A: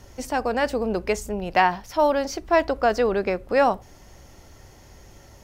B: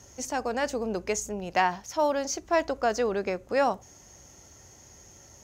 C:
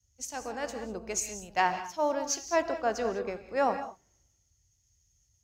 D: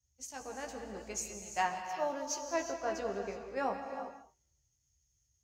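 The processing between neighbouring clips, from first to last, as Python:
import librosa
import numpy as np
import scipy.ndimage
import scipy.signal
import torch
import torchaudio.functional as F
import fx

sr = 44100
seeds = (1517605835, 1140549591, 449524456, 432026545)

y1 = scipy.signal.sosfilt(scipy.signal.butter(2, 67.0, 'highpass', fs=sr, output='sos'), x)
y1 = fx.peak_eq(y1, sr, hz=6500.0, db=14.0, octaves=0.38)
y1 = y1 * librosa.db_to_amplitude(-5.5)
y2 = fx.rev_gated(y1, sr, seeds[0], gate_ms=230, shape='rising', drr_db=6.0)
y2 = fx.band_widen(y2, sr, depth_pct=100)
y2 = y2 * librosa.db_to_amplitude(-5.5)
y3 = fx.doubler(y2, sr, ms=15.0, db=-5.5)
y3 = fx.rev_gated(y3, sr, seeds[1], gate_ms=400, shape='rising', drr_db=7.5)
y3 = y3 * librosa.db_to_amplitude(-8.0)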